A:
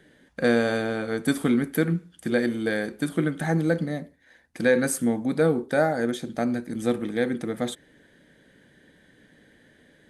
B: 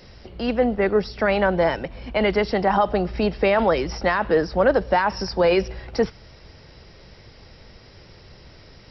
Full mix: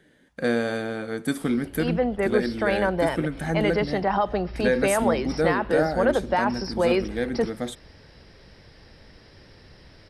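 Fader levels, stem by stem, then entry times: −2.5, −4.0 decibels; 0.00, 1.40 seconds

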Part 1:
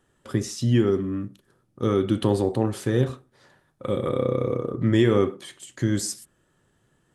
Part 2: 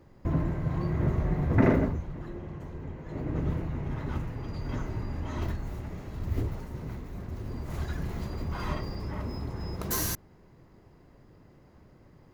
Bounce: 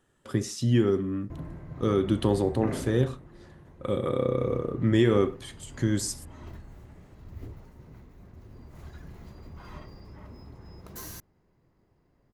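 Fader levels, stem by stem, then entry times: −2.5, −11.5 decibels; 0.00, 1.05 seconds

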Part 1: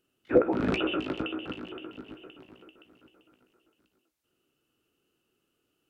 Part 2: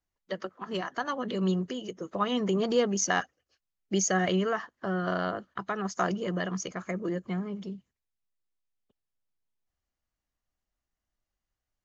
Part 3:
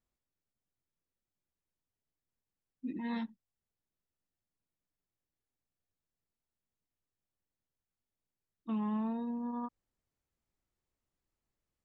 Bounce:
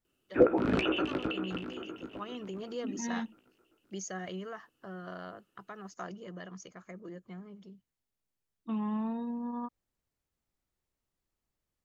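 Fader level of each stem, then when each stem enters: −1.0, −13.5, +1.0 decibels; 0.05, 0.00, 0.00 seconds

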